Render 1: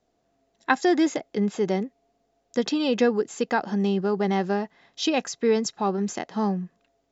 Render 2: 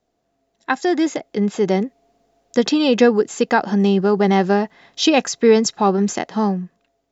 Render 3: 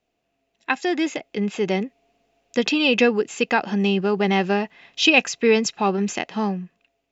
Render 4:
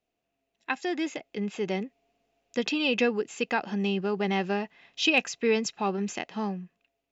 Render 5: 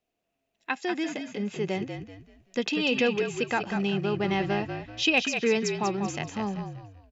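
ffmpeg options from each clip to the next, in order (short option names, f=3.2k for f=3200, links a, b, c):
-af "dynaudnorm=f=200:g=9:m=11.5dB"
-af "equalizer=f=2.6k:t=o:w=0.6:g=14,volume=-5dB"
-af "asoftclip=type=hard:threshold=-3dB,volume=-7.5dB"
-filter_complex "[0:a]asplit=5[a][b][c][d][e];[b]adelay=192,afreqshift=-46,volume=-7dB[f];[c]adelay=384,afreqshift=-92,volume=-16.6dB[g];[d]adelay=576,afreqshift=-138,volume=-26.3dB[h];[e]adelay=768,afreqshift=-184,volume=-35.9dB[i];[a][f][g][h][i]amix=inputs=5:normalize=0"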